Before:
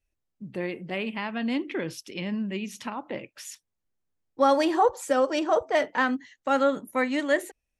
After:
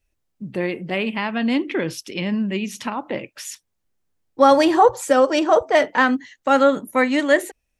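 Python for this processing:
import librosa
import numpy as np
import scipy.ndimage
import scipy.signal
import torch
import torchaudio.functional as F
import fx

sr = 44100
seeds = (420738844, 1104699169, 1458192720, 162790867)

y = fx.peak_eq(x, sr, hz=120.0, db=14.5, octaves=0.32, at=(4.51, 5.02))
y = F.gain(torch.from_numpy(y), 7.5).numpy()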